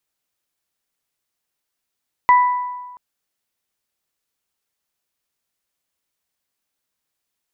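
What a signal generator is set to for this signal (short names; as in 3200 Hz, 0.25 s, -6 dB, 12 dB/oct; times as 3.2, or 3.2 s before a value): additive tone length 0.68 s, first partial 989 Hz, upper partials -10 dB, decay 1.33 s, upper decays 0.78 s, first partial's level -7 dB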